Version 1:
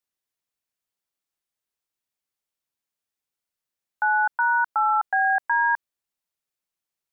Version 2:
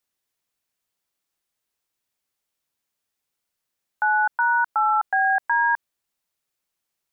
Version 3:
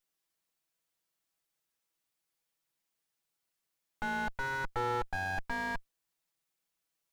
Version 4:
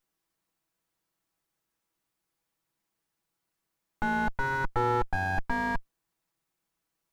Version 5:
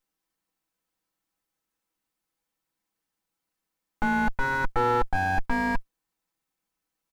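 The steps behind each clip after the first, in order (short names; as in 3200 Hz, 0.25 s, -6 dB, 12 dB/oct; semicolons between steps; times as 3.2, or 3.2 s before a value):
limiter -19.5 dBFS, peak gain reduction 5 dB; gain +6 dB
minimum comb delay 6.1 ms; slew limiter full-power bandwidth 32 Hz; gain -2 dB
EQ curve 360 Hz 0 dB, 520 Hz -5 dB, 960 Hz -2 dB, 3200 Hz -9 dB; gain +9 dB
comb 3.9 ms, depth 38%; sample leveller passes 1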